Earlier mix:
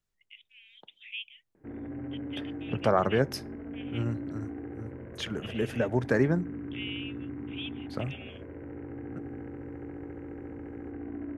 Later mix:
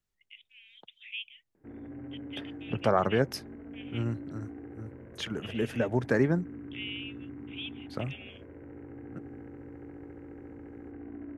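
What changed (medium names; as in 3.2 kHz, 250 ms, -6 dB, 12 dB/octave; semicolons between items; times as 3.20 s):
background -4.5 dB; reverb: off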